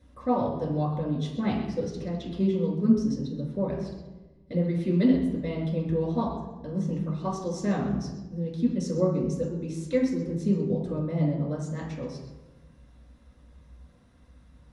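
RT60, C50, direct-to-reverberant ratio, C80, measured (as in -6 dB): 1.1 s, 3.5 dB, -5.0 dB, 5.5 dB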